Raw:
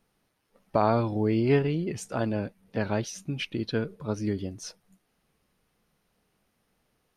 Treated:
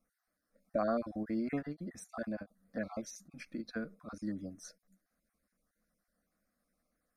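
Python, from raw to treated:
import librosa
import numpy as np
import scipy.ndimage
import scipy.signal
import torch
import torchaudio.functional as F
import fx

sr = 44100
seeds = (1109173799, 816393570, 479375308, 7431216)

y = fx.spec_dropout(x, sr, seeds[0], share_pct=24)
y = fx.fixed_phaser(y, sr, hz=600.0, stages=8)
y = fx.end_taper(y, sr, db_per_s=480.0)
y = y * 10.0 ** (-6.0 / 20.0)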